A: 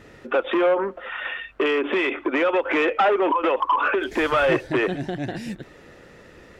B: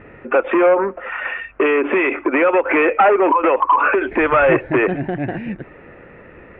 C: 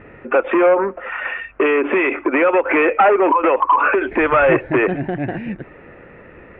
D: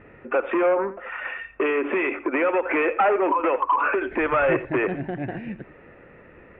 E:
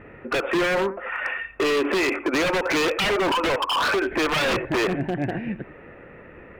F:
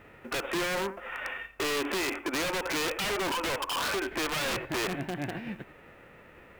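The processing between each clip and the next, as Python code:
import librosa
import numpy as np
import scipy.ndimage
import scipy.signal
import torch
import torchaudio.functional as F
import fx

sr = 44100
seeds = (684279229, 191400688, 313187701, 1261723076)

y1 = scipy.signal.sosfilt(scipy.signal.ellip(4, 1.0, 80, 2500.0, 'lowpass', fs=sr, output='sos'), x)
y1 = y1 * 10.0 ** (6.5 / 20.0)
y2 = y1
y3 = y2 + 10.0 ** (-15.5 / 20.0) * np.pad(y2, (int(87 * sr / 1000.0), 0))[:len(y2)]
y3 = y3 * 10.0 ** (-7.0 / 20.0)
y4 = 10.0 ** (-21.0 / 20.0) * (np.abs((y3 / 10.0 ** (-21.0 / 20.0) + 3.0) % 4.0 - 2.0) - 1.0)
y4 = y4 * 10.0 ** (4.0 / 20.0)
y5 = fx.envelope_flatten(y4, sr, power=0.6)
y5 = y5 * 10.0 ** (-8.5 / 20.0)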